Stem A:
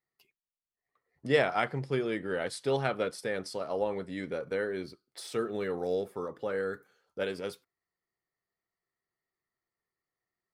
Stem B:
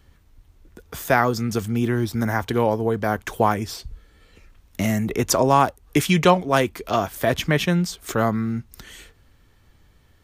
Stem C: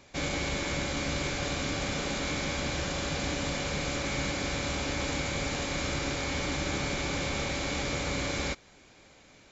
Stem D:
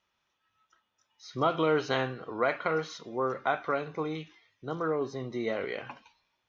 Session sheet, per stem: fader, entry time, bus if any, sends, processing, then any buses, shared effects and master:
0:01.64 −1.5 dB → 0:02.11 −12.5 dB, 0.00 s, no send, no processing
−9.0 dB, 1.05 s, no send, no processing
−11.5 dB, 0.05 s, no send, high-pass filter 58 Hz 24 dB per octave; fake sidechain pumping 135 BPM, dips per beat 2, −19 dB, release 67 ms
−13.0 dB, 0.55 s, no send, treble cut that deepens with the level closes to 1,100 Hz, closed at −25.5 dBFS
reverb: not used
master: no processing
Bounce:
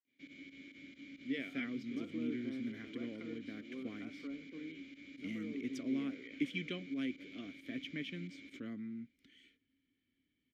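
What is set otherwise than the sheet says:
stem B: entry 1.05 s → 0.45 s
stem D −13.0 dB → −2.5 dB
master: extra formant filter i

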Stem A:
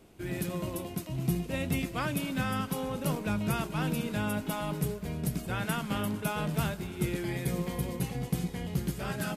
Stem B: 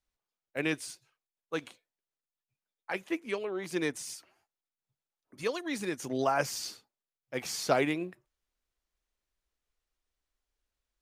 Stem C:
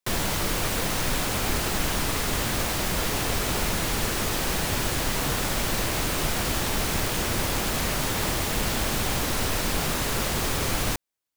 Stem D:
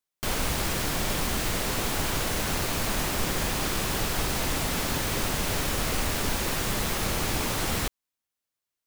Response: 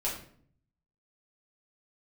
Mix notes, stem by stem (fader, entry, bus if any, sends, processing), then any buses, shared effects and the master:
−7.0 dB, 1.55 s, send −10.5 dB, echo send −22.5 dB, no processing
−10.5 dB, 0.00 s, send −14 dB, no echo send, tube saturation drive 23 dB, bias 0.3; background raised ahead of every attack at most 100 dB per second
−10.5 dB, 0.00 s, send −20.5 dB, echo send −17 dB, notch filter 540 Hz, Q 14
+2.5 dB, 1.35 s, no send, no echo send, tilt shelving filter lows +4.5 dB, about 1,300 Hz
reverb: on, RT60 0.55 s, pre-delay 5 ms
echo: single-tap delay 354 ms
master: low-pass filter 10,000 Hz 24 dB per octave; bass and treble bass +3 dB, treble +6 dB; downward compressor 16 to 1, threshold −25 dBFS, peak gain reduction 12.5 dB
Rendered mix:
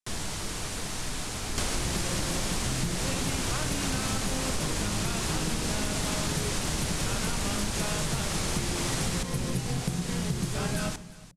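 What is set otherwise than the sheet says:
stem A −7.0 dB → +1.0 dB
stem B: muted
stem D: missing tilt shelving filter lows +4.5 dB, about 1,300 Hz

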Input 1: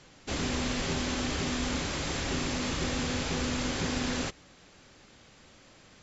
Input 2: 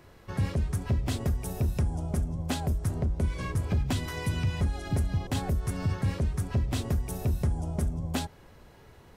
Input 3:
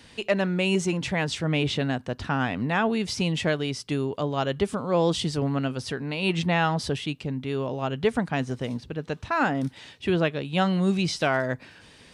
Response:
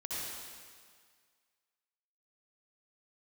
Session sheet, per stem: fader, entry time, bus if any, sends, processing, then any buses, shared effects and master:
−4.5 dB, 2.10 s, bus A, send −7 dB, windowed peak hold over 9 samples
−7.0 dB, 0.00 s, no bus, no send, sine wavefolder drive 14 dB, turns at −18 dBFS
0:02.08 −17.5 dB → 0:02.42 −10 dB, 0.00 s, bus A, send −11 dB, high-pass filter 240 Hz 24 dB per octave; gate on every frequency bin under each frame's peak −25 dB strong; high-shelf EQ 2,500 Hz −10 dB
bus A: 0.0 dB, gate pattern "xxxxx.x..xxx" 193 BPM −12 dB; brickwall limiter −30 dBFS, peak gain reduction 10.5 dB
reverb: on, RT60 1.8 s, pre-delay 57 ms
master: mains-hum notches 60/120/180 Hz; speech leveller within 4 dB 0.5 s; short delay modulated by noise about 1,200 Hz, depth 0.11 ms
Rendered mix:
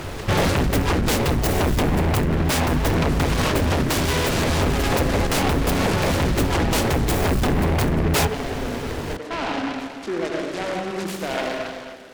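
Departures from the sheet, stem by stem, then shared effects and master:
stem 2 −7.0 dB → +2.5 dB
stem 3 −17.5 dB → −11.0 dB
reverb return +8.0 dB

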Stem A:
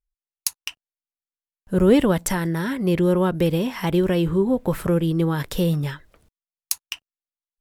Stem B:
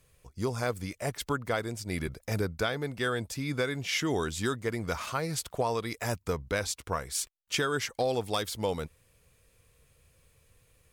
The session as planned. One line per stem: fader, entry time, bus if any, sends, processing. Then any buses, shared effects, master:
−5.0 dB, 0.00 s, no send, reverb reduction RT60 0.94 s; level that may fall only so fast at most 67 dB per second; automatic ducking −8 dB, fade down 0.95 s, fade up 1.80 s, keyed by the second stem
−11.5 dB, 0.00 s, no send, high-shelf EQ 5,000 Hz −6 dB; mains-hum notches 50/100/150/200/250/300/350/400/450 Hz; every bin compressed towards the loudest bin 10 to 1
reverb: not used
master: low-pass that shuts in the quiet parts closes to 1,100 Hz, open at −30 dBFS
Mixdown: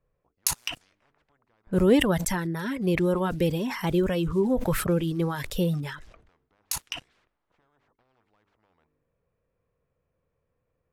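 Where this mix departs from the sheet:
stem A −5.0 dB → +4.5 dB
stem B −11.5 dB → −21.5 dB

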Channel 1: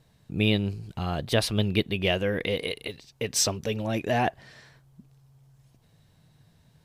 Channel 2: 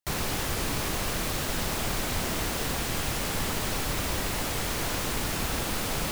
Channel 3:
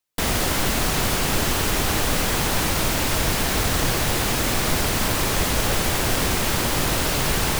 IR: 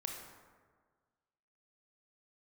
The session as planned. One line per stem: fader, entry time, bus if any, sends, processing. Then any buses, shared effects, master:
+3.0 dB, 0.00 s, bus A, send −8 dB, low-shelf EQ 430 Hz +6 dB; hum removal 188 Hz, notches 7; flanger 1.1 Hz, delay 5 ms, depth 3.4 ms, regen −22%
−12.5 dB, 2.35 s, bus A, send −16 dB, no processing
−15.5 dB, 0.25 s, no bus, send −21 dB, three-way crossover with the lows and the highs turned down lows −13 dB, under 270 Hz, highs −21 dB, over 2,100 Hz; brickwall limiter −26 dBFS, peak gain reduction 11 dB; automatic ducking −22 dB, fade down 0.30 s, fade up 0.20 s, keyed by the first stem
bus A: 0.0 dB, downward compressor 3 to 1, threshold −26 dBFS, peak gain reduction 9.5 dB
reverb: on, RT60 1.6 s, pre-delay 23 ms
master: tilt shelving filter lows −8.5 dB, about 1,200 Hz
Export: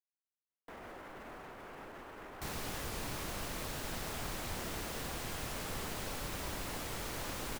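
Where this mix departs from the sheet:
stem 1: muted
stem 3: entry 0.25 s → 0.50 s
master: missing tilt shelving filter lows −8.5 dB, about 1,200 Hz

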